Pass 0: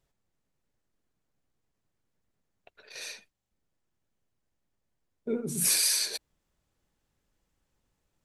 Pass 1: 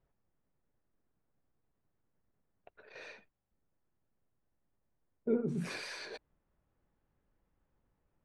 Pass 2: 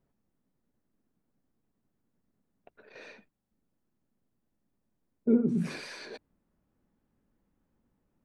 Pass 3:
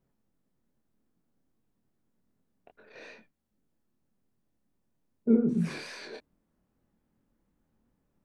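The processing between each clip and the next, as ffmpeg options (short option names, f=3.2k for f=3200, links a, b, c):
-af "lowpass=1.6k"
-af "equalizer=f=230:t=o:w=1.1:g=10.5,bandreject=f=50:t=h:w=6,bandreject=f=100:t=h:w=6,bandreject=f=150:t=h:w=6"
-af "flanger=delay=22.5:depth=5:speed=2.5,volume=3.5dB"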